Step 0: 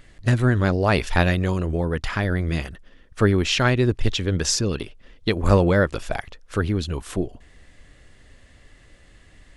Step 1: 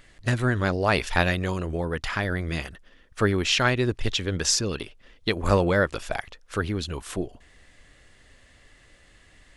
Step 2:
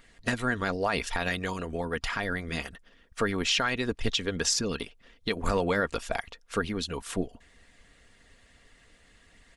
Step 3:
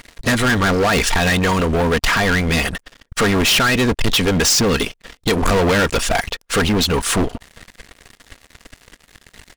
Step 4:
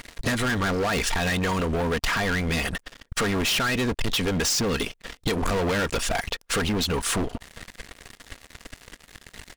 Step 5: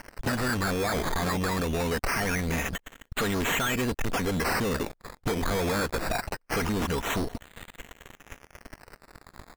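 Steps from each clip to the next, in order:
low-shelf EQ 460 Hz −6.5 dB
harmonic and percussive parts rebalanced harmonic −9 dB; comb filter 4.3 ms, depth 36%; brickwall limiter −15.5 dBFS, peak gain reduction 10 dB
leveller curve on the samples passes 5; level +3.5 dB
downward compressor 6 to 1, threshold −24 dBFS, peak gain reduction 9.5 dB
sample-and-hold swept by an LFO 12×, swing 60% 0.23 Hz; level −3 dB

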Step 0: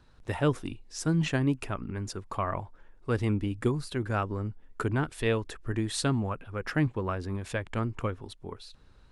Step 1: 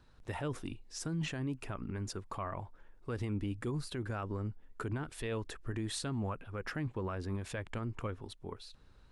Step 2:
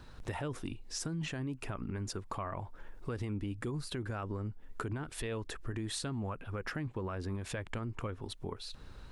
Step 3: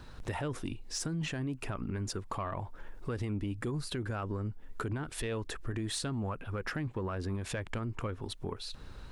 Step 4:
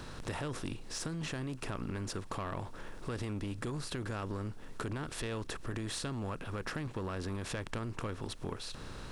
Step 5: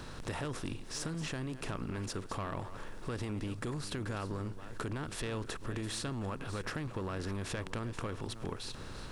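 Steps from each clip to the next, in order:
brickwall limiter −25.5 dBFS, peak gain reduction 11.5 dB; level −3.5 dB
downward compressor 3 to 1, threshold −50 dBFS, peak gain reduction 13 dB; level +11 dB
soft clipping −27 dBFS, distortion −26 dB; level +3 dB
compressor on every frequency bin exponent 0.6; level −5.5 dB
delay that plays each chunk backwards 368 ms, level −12.5 dB

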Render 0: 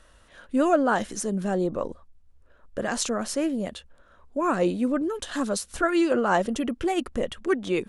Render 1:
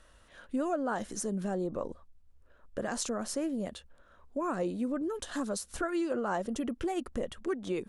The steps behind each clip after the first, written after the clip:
dynamic equaliser 2,700 Hz, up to −5 dB, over −44 dBFS, Q 0.96
downward compressor 3 to 1, threshold −26 dBFS, peak gain reduction 8 dB
level −4 dB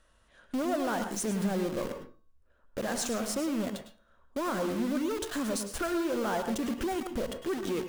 in parallel at −3.5 dB: log-companded quantiser 2 bits
on the sum: tuned comb filter 220 Hz, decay 0.63 s, harmonics odd, mix 50%
convolution reverb RT60 0.35 s, pre-delay 100 ms, DRR 7.5 dB

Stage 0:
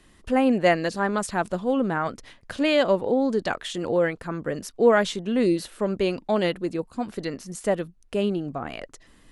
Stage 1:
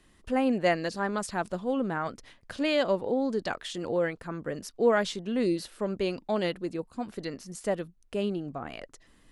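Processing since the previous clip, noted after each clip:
dynamic equaliser 4,900 Hz, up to +4 dB, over −50 dBFS, Q 2.7
level −5.5 dB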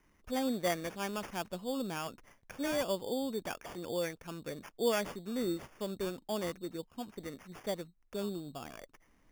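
decimation without filtering 11×
level −7.5 dB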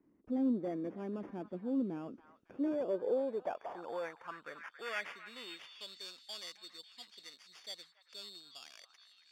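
harmonic generator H 5 −14 dB, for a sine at −20 dBFS
echo through a band-pass that steps 277 ms, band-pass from 1,300 Hz, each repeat 0.7 octaves, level −8 dB
band-pass filter sweep 290 Hz → 4,300 Hz, 0:02.41–0:06.04
level +1 dB

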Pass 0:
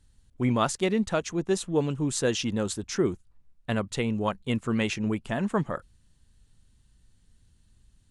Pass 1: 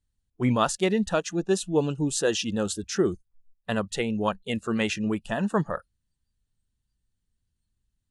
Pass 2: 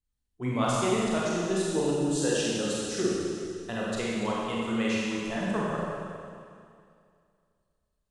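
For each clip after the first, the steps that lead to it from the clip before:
noise reduction from a noise print of the clip's start 19 dB; level +2 dB
mains-hum notches 50/100/150/200 Hz; four-comb reverb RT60 2.3 s, combs from 31 ms, DRR −6 dB; level −8.5 dB

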